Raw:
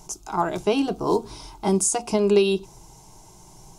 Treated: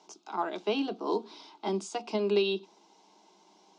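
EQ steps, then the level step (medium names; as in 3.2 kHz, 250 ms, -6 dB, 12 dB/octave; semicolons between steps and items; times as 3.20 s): steep high-pass 200 Hz 72 dB/octave; four-pole ladder low-pass 4.7 kHz, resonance 40%; 0.0 dB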